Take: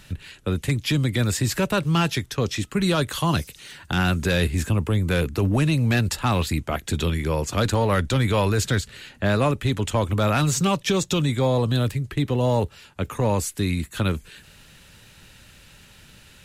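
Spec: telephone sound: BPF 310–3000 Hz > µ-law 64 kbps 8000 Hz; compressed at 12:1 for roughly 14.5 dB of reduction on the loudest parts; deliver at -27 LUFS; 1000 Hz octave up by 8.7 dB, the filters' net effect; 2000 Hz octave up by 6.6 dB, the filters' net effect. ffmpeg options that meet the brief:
-af "equalizer=f=1k:t=o:g=9,equalizer=f=2k:t=o:g=6.5,acompressor=threshold=-27dB:ratio=12,highpass=310,lowpass=3k,volume=7.5dB" -ar 8000 -c:a pcm_mulaw

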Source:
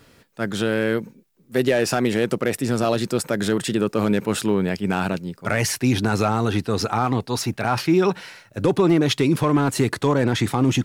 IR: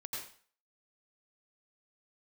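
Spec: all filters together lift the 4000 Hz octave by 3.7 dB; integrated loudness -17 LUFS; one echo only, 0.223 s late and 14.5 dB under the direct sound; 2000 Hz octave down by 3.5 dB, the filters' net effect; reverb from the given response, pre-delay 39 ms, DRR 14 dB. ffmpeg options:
-filter_complex "[0:a]equalizer=f=2k:t=o:g=-6.5,equalizer=f=4k:t=o:g=6.5,aecho=1:1:223:0.188,asplit=2[a][b];[1:a]atrim=start_sample=2205,adelay=39[c];[b][c]afir=irnorm=-1:irlink=0,volume=-14dB[d];[a][d]amix=inputs=2:normalize=0,volume=4.5dB"

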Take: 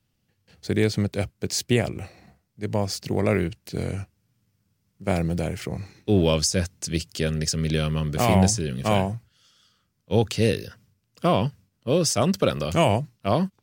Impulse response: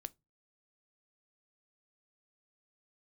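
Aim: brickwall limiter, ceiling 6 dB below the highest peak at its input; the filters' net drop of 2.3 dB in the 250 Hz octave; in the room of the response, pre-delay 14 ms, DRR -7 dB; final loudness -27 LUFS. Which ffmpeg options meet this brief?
-filter_complex "[0:a]equalizer=f=250:t=o:g=-3.5,alimiter=limit=-13dB:level=0:latency=1,asplit=2[a][b];[1:a]atrim=start_sample=2205,adelay=14[c];[b][c]afir=irnorm=-1:irlink=0,volume=11dB[d];[a][d]amix=inputs=2:normalize=0,volume=-7.5dB"

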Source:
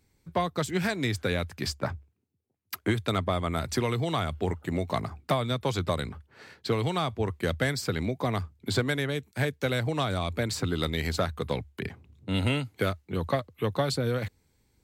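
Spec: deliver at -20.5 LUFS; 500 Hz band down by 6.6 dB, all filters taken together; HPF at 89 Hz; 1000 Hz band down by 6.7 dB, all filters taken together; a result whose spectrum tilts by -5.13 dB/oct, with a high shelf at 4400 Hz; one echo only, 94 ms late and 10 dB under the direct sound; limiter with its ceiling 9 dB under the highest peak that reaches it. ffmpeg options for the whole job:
-af "highpass=89,equalizer=f=500:t=o:g=-6.5,equalizer=f=1k:t=o:g=-6.5,highshelf=f=4.4k:g=-7,alimiter=level_in=1.5dB:limit=-24dB:level=0:latency=1,volume=-1.5dB,aecho=1:1:94:0.316,volume=15.5dB"

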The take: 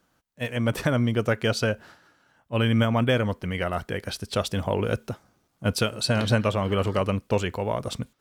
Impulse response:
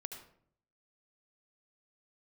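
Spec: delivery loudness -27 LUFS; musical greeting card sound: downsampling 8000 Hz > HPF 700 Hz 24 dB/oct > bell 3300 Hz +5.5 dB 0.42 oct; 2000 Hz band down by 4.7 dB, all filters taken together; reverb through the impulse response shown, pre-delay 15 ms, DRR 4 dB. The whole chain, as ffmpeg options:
-filter_complex "[0:a]equalizer=f=2k:t=o:g=-7.5,asplit=2[a][b];[1:a]atrim=start_sample=2205,adelay=15[c];[b][c]afir=irnorm=-1:irlink=0,volume=-1.5dB[d];[a][d]amix=inputs=2:normalize=0,aresample=8000,aresample=44100,highpass=f=700:w=0.5412,highpass=f=700:w=1.3066,equalizer=f=3.3k:t=o:w=0.42:g=5.5,volume=5.5dB"

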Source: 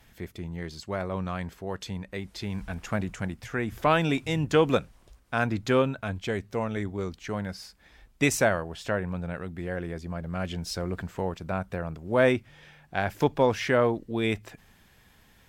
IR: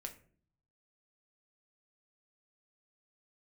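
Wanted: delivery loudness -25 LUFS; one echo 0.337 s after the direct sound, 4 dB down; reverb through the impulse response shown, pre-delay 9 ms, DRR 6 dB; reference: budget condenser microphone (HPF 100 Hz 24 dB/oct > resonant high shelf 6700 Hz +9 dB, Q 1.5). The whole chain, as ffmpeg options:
-filter_complex "[0:a]aecho=1:1:337:0.631,asplit=2[a][b];[1:a]atrim=start_sample=2205,adelay=9[c];[b][c]afir=irnorm=-1:irlink=0,volume=-2.5dB[d];[a][d]amix=inputs=2:normalize=0,highpass=f=100:w=0.5412,highpass=f=100:w=1.3066,highshelf=f=6.7k:t=q:w=1.5:g=9,volume=1.5dB"

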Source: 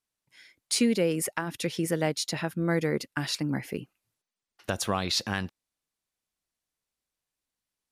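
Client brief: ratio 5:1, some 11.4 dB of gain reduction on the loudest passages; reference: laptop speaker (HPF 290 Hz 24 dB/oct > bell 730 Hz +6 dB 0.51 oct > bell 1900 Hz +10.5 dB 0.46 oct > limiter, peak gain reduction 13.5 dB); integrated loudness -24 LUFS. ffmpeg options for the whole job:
-af "acompressor=threshold=-32dB:ratio=5,highpass=f=290:w=0.5412,highpass=f=290:w=1.3066,equalizer=f=730:t=o:w=0.51:g=6,equalizer=f=1.9k:t=o:w=0.46:g=10.5,volume=14.5dB,alimiter=limit=-12.5dB:level=0:latency=1"

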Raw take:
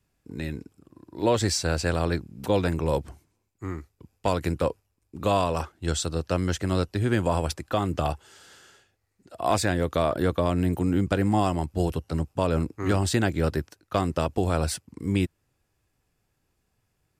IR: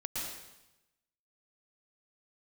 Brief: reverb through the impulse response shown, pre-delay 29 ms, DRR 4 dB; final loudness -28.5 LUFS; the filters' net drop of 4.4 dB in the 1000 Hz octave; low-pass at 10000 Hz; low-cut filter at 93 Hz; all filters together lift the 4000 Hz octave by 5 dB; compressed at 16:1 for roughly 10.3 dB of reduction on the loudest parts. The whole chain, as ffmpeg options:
-filter_complex "[0:a]highpass=93,lowpass=10k,equalizer=f=1k:t=o:g=-6.5,equalizer=f=4k:t=o:g=6.5,acompressor=threshold=-30dB:ratio=16,asplit=2[a][b];[1:a]atrim=start_sample=2205,adelay=29[c];[b][c]afir=irnorm=-1:irlink=0,volume=-6.5dB[d];[a][d]amix=inputs=2:normalize=0,volume=6.5dB"

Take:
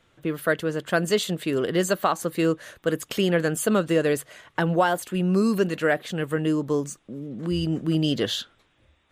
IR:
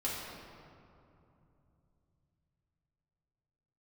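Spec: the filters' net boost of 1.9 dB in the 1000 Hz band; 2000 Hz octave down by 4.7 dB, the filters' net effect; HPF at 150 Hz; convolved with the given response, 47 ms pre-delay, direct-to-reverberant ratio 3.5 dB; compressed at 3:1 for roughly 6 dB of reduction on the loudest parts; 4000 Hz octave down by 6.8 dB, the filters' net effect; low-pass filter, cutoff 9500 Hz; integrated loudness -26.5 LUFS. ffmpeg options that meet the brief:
-filter_complex "[0:a]highpass=150,lowpass=9.5k,equalizer=f=1k:t=o:g=5,equalizer=f=2k:t=o:g=-8,equalizer=f=4k:t=o:g=-6,acompressor=threshold=-24dB:ratio=3,asplit=2[a][b];[1:a]atrim=start_sample=2205,adelay=47[c];[b][c]afir=irnorm=-1:irlink=0,volume=-8dB[d];[a][d]amix=inputs=2:normalize=0,volume=1dB"

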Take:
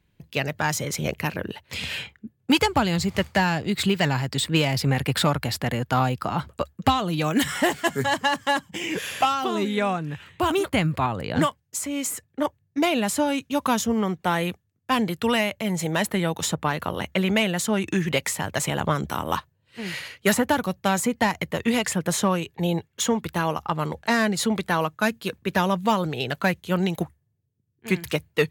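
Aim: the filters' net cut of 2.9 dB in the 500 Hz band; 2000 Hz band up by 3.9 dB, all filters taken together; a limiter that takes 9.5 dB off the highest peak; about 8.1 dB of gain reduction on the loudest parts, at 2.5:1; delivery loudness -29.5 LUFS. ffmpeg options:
-af "equalizer=f=500:t=o:g=-4,equalizer=f=2k:t=o:g=5,acompressor=threshold=-28dB:ratio=2.5,volume=3dB,alimiter=limit=-18dB:level=0:latency=1"

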